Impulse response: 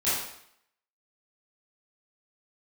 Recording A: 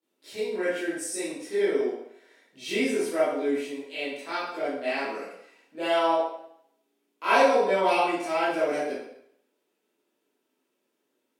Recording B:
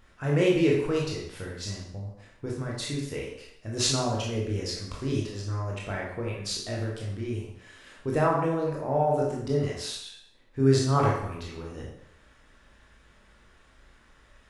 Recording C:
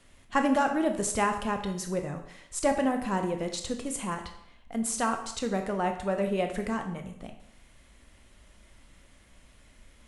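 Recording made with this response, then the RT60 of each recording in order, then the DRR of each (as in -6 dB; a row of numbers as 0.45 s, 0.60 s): A; 0.70 s, 0.70 s, 0.70 s; -13.0 dB, -3.5 dB, 5.0 dB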